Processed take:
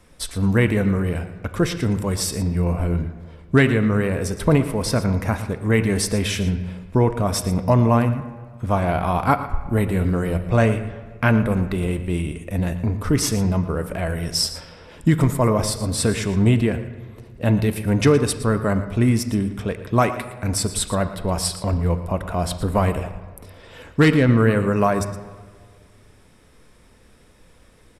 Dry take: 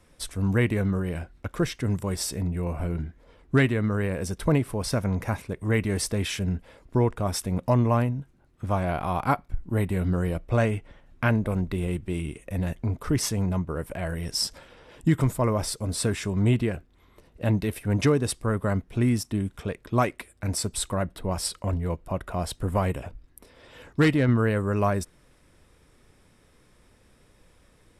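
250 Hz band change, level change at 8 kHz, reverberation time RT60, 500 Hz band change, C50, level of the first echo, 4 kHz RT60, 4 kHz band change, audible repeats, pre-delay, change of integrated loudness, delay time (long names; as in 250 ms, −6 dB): +6.0 dB, +5.5 dB, 1.7 s, +6.0 dB, 10.5 dB, −14.5 dB, 1.1 s, +6.0 dB, 1, 4 ms, +6.0 dB, 116 ms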